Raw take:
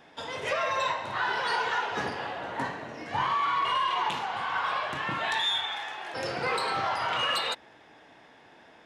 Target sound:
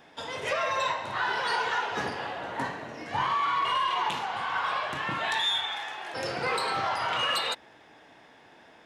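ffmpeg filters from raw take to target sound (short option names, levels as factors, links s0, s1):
-af "highshelf=f=7600:g=4"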